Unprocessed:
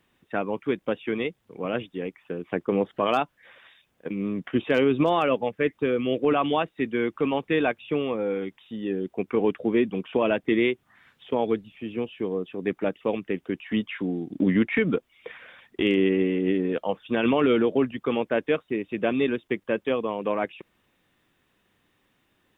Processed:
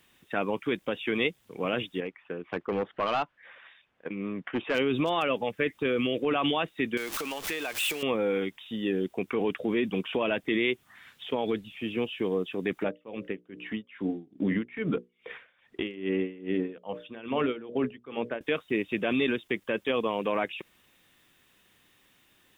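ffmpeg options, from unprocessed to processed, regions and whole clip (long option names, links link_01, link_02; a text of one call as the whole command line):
ffmpeg -i in.wav -filter_complex "[0:a]asettb=1/sr,asplit=3[link_01][link_02][link_03];[link_01]atrim=end=2.004[link_04];[link_02]atrim=start=2:end=4.75,asetpts=PTS-STARTPTS,afade=type=in:duration=0.004:curve=qsin,afade=type=out:start_time=2.746:duration=0.004:curve=qsin,lowshelf=frequency=480:gain=-7.5,volume=24dB,asoftclip=hard,volume=-24dB,lowpass=1900[link_05];[link_03]atrim=start=4.746[link_06];[link_04][link_05]acrossfade=duration=0.004:curve1=hsin:curve2=qsin[link_07];[link_07][link_06]acrossfade=duration=0.004:curve1=qsin:curve2=hsin,asettb=1/sr,asplit=3[link_08][link_09][link_10];[link_08]atrim=end=6.974[link_11];[link_09]atrim=start=6.97:end=8.03,asetpts=PTS-STARTPTS,afade=type=in:duration=0.004:curve=qsin,afade=type=out:start_time=1.056:duration=0.004:curve=qsin,aeval=exprs='val(0)+0.5*0.0237*sgn(val(0))':channel_layout=same,equalizer=frequency=140:width_type=o:width=2.5:gain=-10.5,acompressor=threshold=-33dB:ratio=6:attack=3.2:release=140:knee=1:detection=peak[link_12];[link_10]atrim=start=8.026[link_13];[link_11][link_12]acrossfade=duration=0.004:curve1=hsin:curve2=qsin[link_14];[link_14][link_13]acrossfade=duration=0.004:curve1=qsin:curve2=hsin,asettb=1/sr,asplit=3[link_15][link_16][link_17];[link_15]atrim=end=12.834[link_18];[link_16]atrim=start=12.83:end=18.41,asetpts=PTS-STARTPTS,afade=type=in:duration=0.004:curve=qsin,afade=type=out:start_time=5.576:duration=0.004:curve=qsin,lowpass=frequency=1700:poles=1,bandreject=frequency=60:width_type=h:width=6,bandreject=frequency=120:width_type=h:width=6,bandreject=frequency=180:width_type=h:width=6,bandreject=frequency=240:width_type=h:width=6,bandreject=frequency=300:width_type=h:width=6,bandreject=frequency=360:width_type=h:width=6,bandreject=frequency=420:width_type=h:width=6,bandreject=frequency=480:width_type=h:width=6,bandreject=frequency=540:width_type=h:width=6,bandreject=frequency=600:width_type=h:width=6,aeval=exprs='val(0)*pow(10,-21*(0.5-0.5*cos(2*PI*2.4*n/s))/20)':channel_layout=same[link_19];[link_17]atrim=start=18.406[link_20];[link_18][link_19]acrossfade=duration=0.004:curve1=hsin:curve2=qsin[link_21];[link_21][link_20]acrossfade=duration=0.004:curve1=qsin:curve2=hsin,alimiter=limit=-19.5dB:level=0:latency=1:release=32,highshelf=frequency=2200:gain=11.5" out.wav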